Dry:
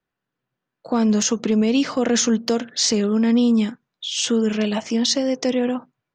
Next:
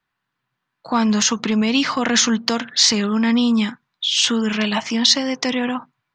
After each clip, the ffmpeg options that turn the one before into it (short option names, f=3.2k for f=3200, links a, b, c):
-af "equalizer=f=125:t=o:w=1:g=3,equalizer=f=500:t=o:w=1:g=-7,equalizer=f=1k:t=o:w=1:g=9,equalizer=f=2k:t=o:w=1:g=6,equalizer=f=4k:t=o:w=1:g=7"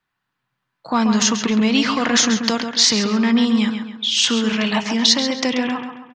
-filter_complex "[0:a]asplit=2[a][b];[b]adelay=135,lowpass=f=4k:p=1,volume=-7dB,asplit=2[c][d];[d]adelay=135,lowpass=f=4k:p=1,volume=0.43,asplit=2[e][f];[f]adelay=135,lowpass=f=4k:p=1,volume=0.43,asplit=2[g][h];[h]adelay=135,lowpass=f=4k:p=1,volume=0.43,asplit=2[i][j];[j]adelay=135,lowpass=f=4k:p=1,volume=0.43[k];[a][c][e][g][i][k]amix=inputs=6:normalize=0"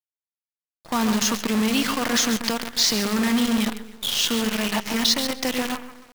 -af "acrusher=bits=4:dc=4:mix=0:aa=0.000001,volume=-5.5dB"